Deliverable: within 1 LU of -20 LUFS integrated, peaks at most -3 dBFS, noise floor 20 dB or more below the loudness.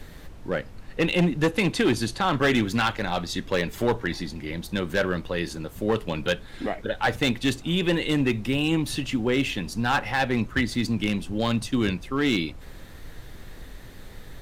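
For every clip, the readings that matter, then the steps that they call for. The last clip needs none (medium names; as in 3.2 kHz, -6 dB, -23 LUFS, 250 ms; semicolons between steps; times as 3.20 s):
clipped samples 1.1%; clipping level -15.5 dBFS; noise floor -43 dBFS; noise floor target -46 dBFS; loudness -25.5 LUFS; peak level -15.5 dBFS; loudness target -20.0 LUFS
-> clip repair -15.5 dBFS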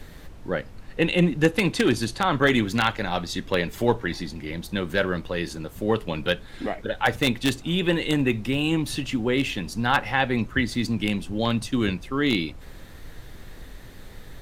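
clipped samples 0.0%; noise floor -43 dBFS; noise floor target -45 dBFS
-> noise print and reduce 6 dB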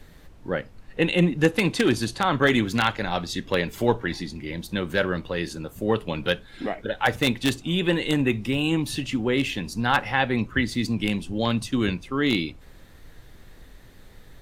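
noise floor -48 dBFS; loudness -25.0 LUFS; peak level -6.5 dBFS; loudness target -20.0 LUFS
-> trim +5 dB; peak limiter -3 dBFS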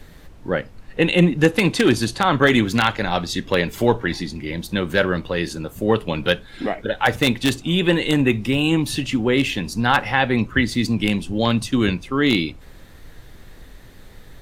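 loudness -20.0 LUFS; peak level -3.0 dBFS; noise floor -43 dBFS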